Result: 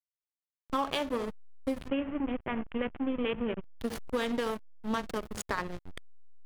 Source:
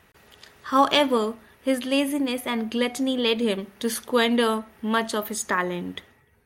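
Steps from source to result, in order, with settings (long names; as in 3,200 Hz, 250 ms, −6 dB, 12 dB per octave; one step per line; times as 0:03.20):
on a send: flutter between parallel walls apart 11.2 metres, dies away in 0.31 s
on the sum: slack as between gear wheels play −18.5 dBFS
0:01.88–0:03.63: Butterworth low-pass 3,100 Hz 72 dB per octave
downward compressor 6 to 1, threshold −25 dBFS, peak gain reduction 11 dB
level −2.5 dB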